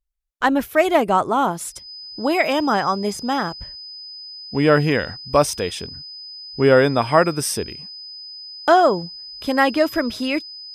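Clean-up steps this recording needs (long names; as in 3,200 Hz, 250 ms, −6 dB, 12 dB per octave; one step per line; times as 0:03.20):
notch filter 5,000 Hz, Q 30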